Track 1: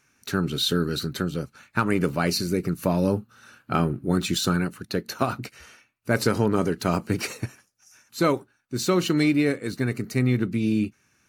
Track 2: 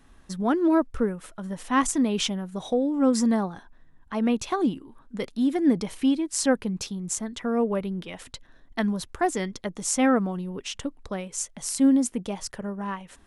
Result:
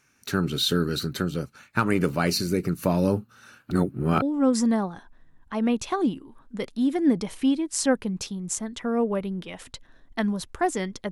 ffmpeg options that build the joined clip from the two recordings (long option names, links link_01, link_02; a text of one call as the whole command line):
ffmpeg -i cue0.wav -i cue1.wav -filter_complex "[0:a]apad=whole_dur=11.11,atrim=end=11.11,asplit=2[link_01][link_02];[link_01]atrim=end=3.712[link_03];[link_02]atrim=start=3.708:end=4.222,asetpts=PTS-STARTPTS,areverse[link_04];[1:a]atrim=start=2.818:end=9.71[link_05];[link_03][link_04]acrossfade=duration=0.004:curve1=hsin:curve2=hsin[link_06];[link_06][link_05]acrossfade=duration=0.004:curve1=hsin:curve2=hsin" out.wav